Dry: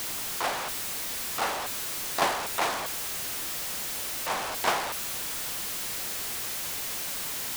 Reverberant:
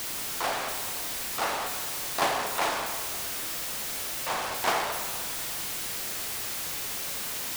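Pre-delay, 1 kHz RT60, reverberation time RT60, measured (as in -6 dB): 22 ms, 1.7 s, 1.6 s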